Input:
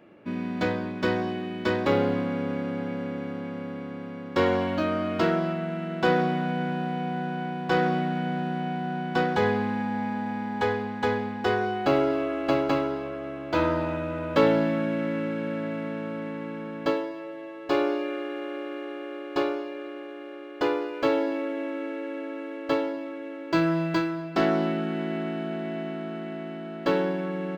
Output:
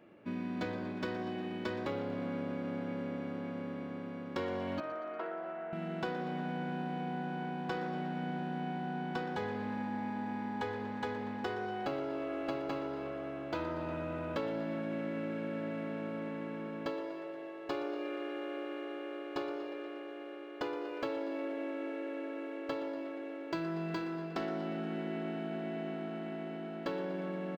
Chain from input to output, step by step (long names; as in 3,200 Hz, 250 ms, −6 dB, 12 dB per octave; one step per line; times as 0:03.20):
downward compressor 6 to 1, threshold −28 dBFS, peak gain reduction 12.5 dB
0:04.80–0:05.73: flat-topped band-pass 930 Hz, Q 0.63
echo with shifted repeats 119 ms, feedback 64%, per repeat +47 Hz, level −15.5 dB
on a send at −20 dB: convolution reverb RT60 0.60 s, pre-delay 8 ms
on the sum: level −6 dB